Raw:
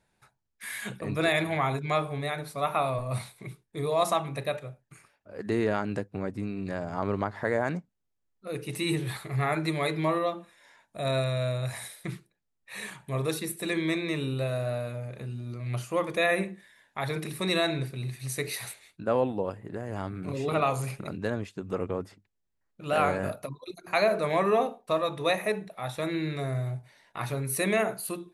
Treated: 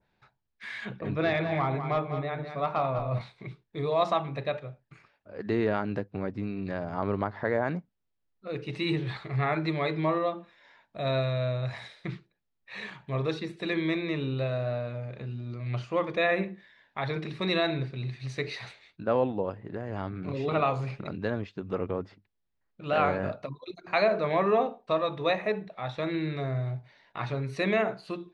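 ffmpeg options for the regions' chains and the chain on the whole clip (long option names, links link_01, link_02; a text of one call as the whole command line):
ffmpeg -i in.wav -filter_complex "[0:a]asettb=1/sr,asplit=3[link_01][link_02][link_03];[link_01]atrim=end=0.854[link_04];[link_02]atrim=start=0.85:end=3.21,asetpts=PTS-STARTPTS,afade=type=in:duration=0.004:curve=qsin,afade=type=out:start_time=2.356:duration=0.004:curve=qsin,equalizer=frequency=9400:width_type=o:width=2.8:gain=-9.5,asoftclip=type=hard:threshold=-19.5dB,aecho=1:1:200:0.376,atrim=end_sample=104076[link_05];[link_03]atrim=start=3.206[link_06];[link_04][link_05]acrossfade=duration=0.004:curve1=hsin:curve2=qsin[link_07];[link_07][link_06]acrossfade=duration=0.004:curve1=qsin:curve2=hsin,lowpass=frequency=4700:width=0.5412,lowpass=frequency=4700:width=1.3066,adynamicequalizer=threshold=0.01:dfrequency=1700:dqfactor=0.7:tfrequency=1700:tqfactor=0.7:attack=5:release=100:ratio=0.375:range=2:mode=cutabove:tftype=highshelf" out.wav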